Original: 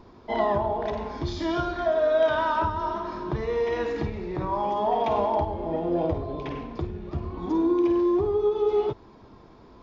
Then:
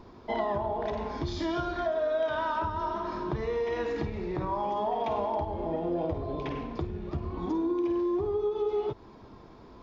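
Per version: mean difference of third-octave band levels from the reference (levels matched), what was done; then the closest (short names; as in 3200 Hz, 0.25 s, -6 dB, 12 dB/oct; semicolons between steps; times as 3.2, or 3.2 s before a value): 2.0 dB: compressor 2.5:1, threshold -29 dBFS, peak gain reduction 8 dB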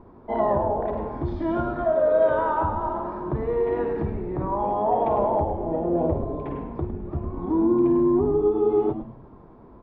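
5.0 dB: LPF 1200 Hz 12 dB/oct; frequency-shifting echo 0.105 s, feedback 38%, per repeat -97 Hz, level -9 dB; gain +2 dB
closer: first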